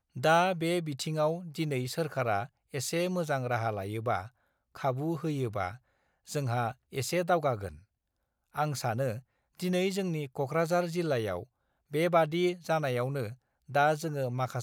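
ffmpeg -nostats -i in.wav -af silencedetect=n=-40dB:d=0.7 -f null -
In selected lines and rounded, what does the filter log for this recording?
silence_start: 7.75
silence_end: 8.56 | silence_duration: 0.81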